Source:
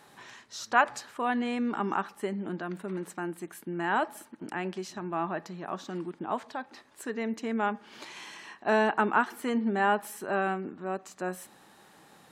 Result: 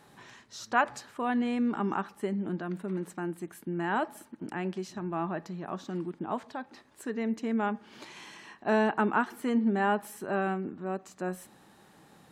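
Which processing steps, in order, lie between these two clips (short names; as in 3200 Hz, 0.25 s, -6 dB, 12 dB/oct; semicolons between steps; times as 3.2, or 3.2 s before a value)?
low shelf 310 Hz +9 dB; gain -3.5 dB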